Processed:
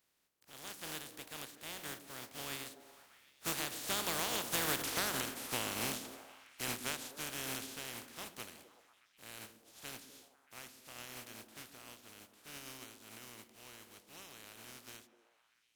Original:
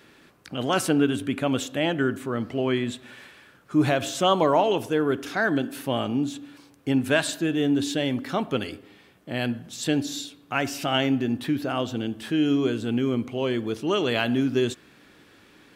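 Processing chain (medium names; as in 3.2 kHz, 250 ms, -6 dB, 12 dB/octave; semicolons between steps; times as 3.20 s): spectral contrast reduction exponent 0.22; Doppler pass-by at 4.82 s, 26 m/s, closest 1.4 m; compression 8:1, threshold -47 dBFS, peak gain reduction 20.5 dB; on a send: repeats whose band climbs or falls 125 ms, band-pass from 250 Hz, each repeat 0.7 oct, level -6.5 dB; on the sum: trim +14.5 dB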